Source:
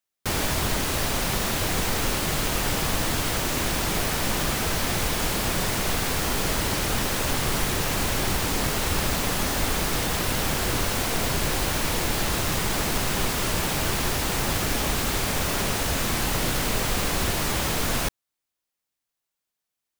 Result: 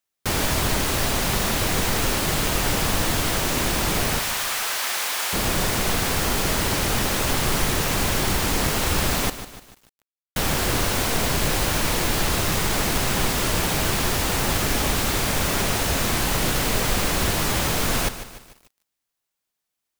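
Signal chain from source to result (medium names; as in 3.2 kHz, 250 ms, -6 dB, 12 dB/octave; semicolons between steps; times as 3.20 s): 4.19–5.33 s: high-pass 890 Hz 12 dB/octave; 9.30–10.36 s: mute; bit-crushed delay 149 ms, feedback 55%, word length 7-bit, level -12 dB; trim +2.5 dB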